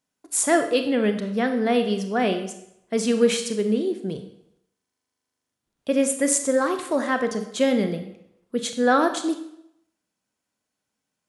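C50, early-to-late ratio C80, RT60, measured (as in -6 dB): 9.5 dB, 12.0 dB, 0.75 s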